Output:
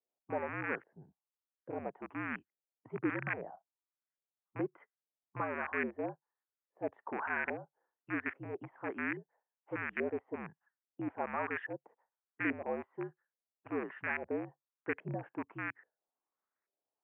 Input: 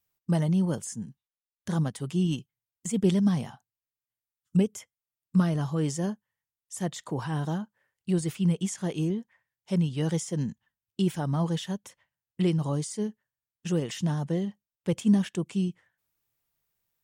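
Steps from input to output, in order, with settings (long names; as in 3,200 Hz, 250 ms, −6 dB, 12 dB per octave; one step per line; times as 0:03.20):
loose part that buzzes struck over −30 dBFS, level −21 dBFS
auto-filter low-pass saw up 1.2 Hz 580–1,900 Hz
dynamic equaliser 1,800 Hz, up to +8 dB, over −50 dBFS, Q 2.6
single-sideband voice off tune −63 Hz 320–2,500 Hz
level −6.5 dB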